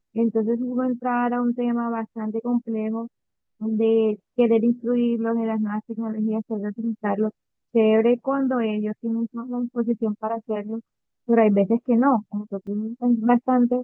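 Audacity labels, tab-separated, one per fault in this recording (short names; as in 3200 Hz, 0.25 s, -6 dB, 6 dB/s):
12.670000	12.670000	gap 4.2 ms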